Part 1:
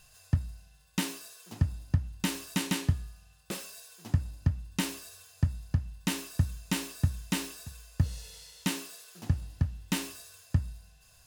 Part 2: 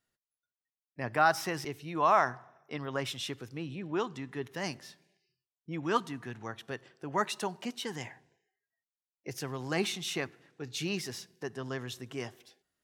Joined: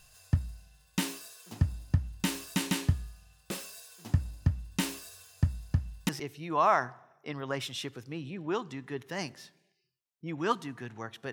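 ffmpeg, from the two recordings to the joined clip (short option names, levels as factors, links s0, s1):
-filter_complex "[0:a]apad=whole_dur=11.32,atrim=end=11.32,atrim=end=6.092[s0];[1:a]atrim=start=1.538:end=6.77[s1];[s0][s1]acrossfade=d=0.004:c1=hsin:c2=hsin"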